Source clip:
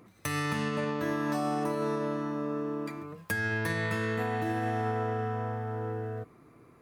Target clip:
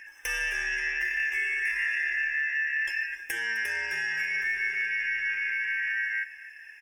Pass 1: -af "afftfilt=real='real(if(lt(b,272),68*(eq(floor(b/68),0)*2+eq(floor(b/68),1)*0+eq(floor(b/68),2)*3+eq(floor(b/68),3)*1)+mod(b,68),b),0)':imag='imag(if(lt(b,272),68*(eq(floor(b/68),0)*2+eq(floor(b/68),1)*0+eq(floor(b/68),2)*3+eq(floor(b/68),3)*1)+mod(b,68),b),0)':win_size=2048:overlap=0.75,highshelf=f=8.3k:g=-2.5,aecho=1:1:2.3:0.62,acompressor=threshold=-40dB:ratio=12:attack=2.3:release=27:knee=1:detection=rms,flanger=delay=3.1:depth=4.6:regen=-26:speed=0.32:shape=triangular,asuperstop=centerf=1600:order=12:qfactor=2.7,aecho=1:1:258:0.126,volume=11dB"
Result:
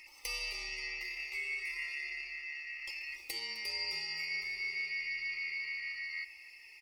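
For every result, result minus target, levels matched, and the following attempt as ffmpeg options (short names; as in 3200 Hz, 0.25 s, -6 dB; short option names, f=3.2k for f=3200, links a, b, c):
4000 Hz band +11.5 dB; compressor: peak gain reduction +6.5 dB
-af "afftfilt=real='real(if(lt(b,272),68*(eq(floor(b/68),0)*2+eq(floor(b/68),1)*0+eq(floor(b/68),2)*3+eq(floor(b/68),3)*1)+mod(b,68),b),0)':imag='imag(if(lt(b,272),68*(eq(floor(b/68),0)*2+eq(floor(b/68),1)*0+eq(floor(b/68),2)*3+eq(floor(b/68),3)*1)+mod(b,68),b),0)':win_size=2048:overlap=0.75,highshelf=f=8.3k:g=-2.5,aecho=1:1:2.3:0.62,acompressor=threshold=-40dB:ratio=12:attack=2.3:release=27:knee=1:detection=rms,flanger=delay=3.1:depth=4.6:regen=-26:speed=0.32:shape=triangular,asuperstop=centerf=4300:order=12:qfactor=2.7,aecho=1:1:258:0.126,volume=11dB"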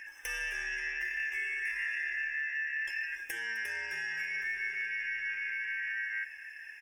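compressor: peak gain reduction +6.5 dB
-af "afftfilt=real='real(if(lt(b,272),68*(eq(floor(b/68),0)*2+eq(floor(b/68),1)*0+eq(floor(b/68),2)*3+eq(floor(b/68),3)*1)+mod(b,68),b),0)':imag='imag(if(lt(b,272),68*(eq(floor(b/68),0)*2+eq(floor(b/68),1)*0+eq(floor(b/68),2)*3+eq(floor(b/68),3)*1)+mod(b,68),b),0)':win_size=2048:overlap=0.75,highshelf=f=8.3k:g=-2.5,aecho=1:1:2.3:0.62,acompressor=threshold=-33dB:ratio=12:attack=2.3:release=27:knee=1:detection=rms,flanger=delay=3.1:depth=4.6:regen=-26:speed=0.32:shape=triangular,asuperstop=centerf=4300:order=12:qfactor=2.7,aecho=1:1:258:0.126,volume=11dB"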